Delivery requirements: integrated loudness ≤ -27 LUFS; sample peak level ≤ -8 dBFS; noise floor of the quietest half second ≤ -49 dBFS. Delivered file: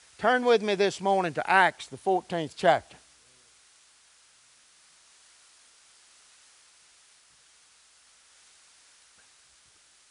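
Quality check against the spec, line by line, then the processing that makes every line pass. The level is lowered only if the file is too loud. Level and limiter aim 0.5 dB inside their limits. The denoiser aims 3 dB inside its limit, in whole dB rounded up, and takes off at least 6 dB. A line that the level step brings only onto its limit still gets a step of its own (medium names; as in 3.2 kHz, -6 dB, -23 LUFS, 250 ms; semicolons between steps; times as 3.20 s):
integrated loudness -25.0 LUFS: fail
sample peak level -6.5 dBFS: fail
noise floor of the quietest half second -60 dBFS: pass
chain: trim -2.5 dB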